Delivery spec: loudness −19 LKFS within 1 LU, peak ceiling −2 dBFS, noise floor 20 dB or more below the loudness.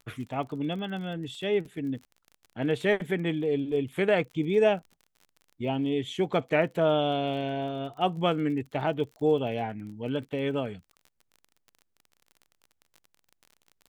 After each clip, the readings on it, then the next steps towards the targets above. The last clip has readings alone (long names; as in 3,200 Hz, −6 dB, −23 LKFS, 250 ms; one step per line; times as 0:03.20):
crackle rate 34 per second; integrated loudness −29.0 LKFS; sample peak −10.5 dBFS; target loudness −19.0 LKFS
→ click removal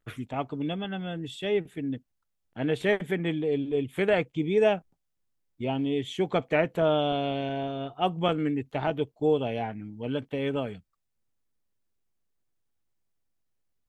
crackle rate 0.14 per second; integrated loudness −28.5 LKFS; sample peak −10.5 dBFS; target loudness −19.0 LKFS
→ level +9.5 dB
brickwall limiter −2 dBFS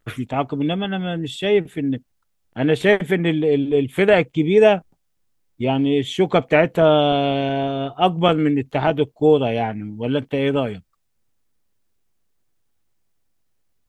integrated loudness −19.5 LKFS; sample peak −2.0 dBFS; background noise floor −69 dBFS